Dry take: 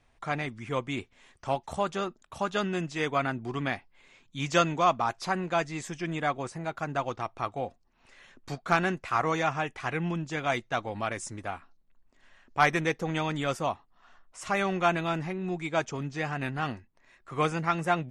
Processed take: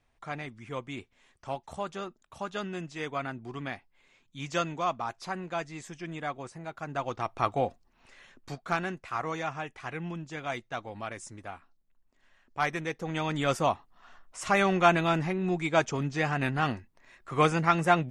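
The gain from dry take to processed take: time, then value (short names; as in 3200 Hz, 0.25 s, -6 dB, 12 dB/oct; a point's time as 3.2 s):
6.77 s -6 dB
7.53 s +6 dB
8.87 s -6 dB
12.88 s -6 dB
13.56 s +3.5 dB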